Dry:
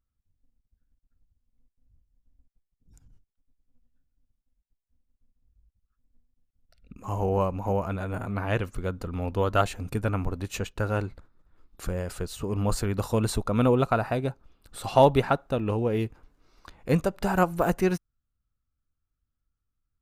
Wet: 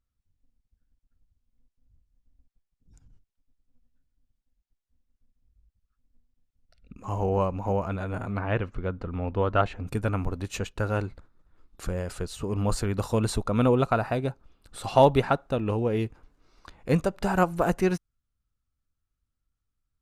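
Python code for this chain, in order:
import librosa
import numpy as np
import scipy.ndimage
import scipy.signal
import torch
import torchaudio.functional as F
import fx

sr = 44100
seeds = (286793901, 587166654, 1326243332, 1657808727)

y = fx.lowpass(x, sr, hz=fx.steps((0.0, 7800.0), (8.39, 2800.0), (9.87, 11000.0)), slope=12)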